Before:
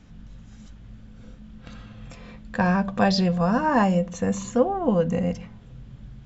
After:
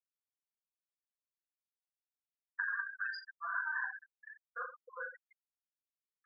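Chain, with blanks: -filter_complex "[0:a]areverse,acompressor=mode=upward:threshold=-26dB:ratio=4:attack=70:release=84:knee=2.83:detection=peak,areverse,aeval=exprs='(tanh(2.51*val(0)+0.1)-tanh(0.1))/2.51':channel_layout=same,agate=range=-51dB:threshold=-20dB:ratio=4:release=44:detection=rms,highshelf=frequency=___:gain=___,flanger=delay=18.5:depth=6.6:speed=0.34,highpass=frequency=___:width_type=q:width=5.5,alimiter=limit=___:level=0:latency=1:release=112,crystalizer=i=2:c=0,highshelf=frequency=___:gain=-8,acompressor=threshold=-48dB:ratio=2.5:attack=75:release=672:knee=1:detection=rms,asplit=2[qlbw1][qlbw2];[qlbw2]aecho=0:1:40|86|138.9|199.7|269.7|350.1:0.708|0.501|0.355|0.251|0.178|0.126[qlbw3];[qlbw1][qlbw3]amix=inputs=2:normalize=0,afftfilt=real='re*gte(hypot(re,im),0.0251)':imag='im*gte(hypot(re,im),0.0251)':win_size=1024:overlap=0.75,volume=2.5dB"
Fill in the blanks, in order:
6900, 9.5, 1500, -15.5dB, 2900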